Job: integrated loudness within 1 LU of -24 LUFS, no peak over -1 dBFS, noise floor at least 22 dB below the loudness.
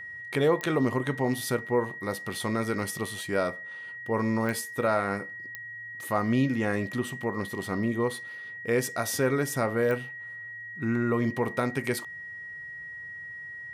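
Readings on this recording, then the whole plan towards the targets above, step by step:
clicks 4; steady tone 1900 Hz; tone level -38 dBFS; loudness -29.5 LUFS; peak -13.0 dBFS; loudness target -24.0 LUFS
-> de-click; notch 1900 Hz, Q 30; gain +5.5 dB

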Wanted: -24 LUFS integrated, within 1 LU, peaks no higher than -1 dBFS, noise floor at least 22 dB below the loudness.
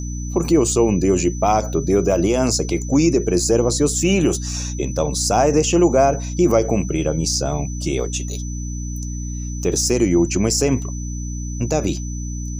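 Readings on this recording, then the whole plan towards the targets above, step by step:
hum 60 Hz; harmonics up to 300 Hz; hum level -24 dBFS; steady tone 6000 Hz; tone level -35 dBFS; loudness -19.0 LUFS; peak -3.0 dBFS; loudness target -24.0 LUFS
-> notches 60/120/180/240/300 Hz; notch 6000 Hz, Q 30; gain -5 dB

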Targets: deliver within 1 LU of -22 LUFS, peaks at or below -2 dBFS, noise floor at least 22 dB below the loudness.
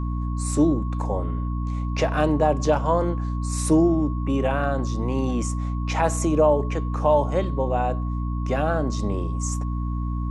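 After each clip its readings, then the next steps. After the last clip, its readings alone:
hum 60 Hz; harmonics up to 300 Hz; hum level -24 dBFS; steady tone 1100 Hz; tone level -38 dBFS; loudness -23.5 LUFS; peak -7.0 dBFS; loudness target -22.0 LUFS
-> de-hum 60 Hz, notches 5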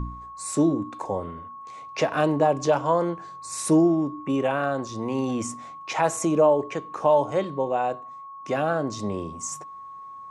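hum none; steady tone 1100 Hz; tone level -38 dBFS
-> notch 1100 Hz, Q 30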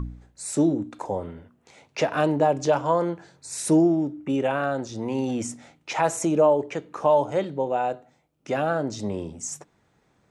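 steady tone none; loudness -24.5 LUFS; peak -9.0 dBFS; loudness target -22.0 LUFS
-> gain +2.5 dB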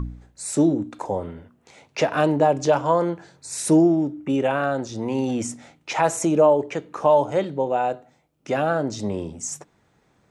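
loudness -22.0 LUFS; peak -6.5 dBFS; noise floor -64 dBFS

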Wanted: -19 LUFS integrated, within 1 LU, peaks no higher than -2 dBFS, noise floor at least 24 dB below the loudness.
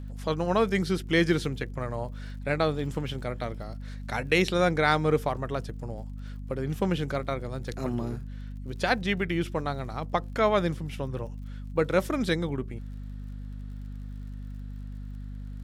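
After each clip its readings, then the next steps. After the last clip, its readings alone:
ticks 50/s; hum 50 Hz; harmonics up to 250 Hz; hum level -35 dBFS; loudness -28.5 LUFS; peak -8.5 dBFS; loudness target -19.0 LUFS
-> de-click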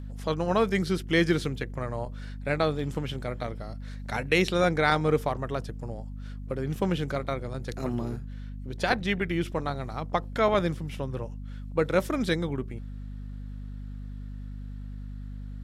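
ticks 0.19/s; hum 50 Hz; harmonics up to 250 Hz; hum level -35 dBFS
-> de-hum 50 Hz, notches 5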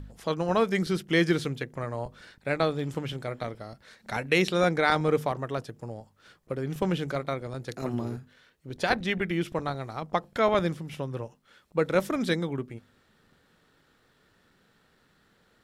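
hum none; loudness -29.0 LUFS; peak -9.0 dBFS; loudness target -19.0 LUFS
-> gain +10 dB; limiter -2 dBFS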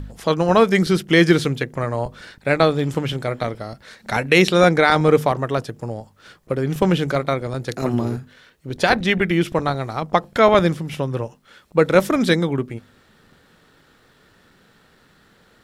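loudness -19.0 LUFS; peak -2.0 dBFS; noise floor -56 dBFS

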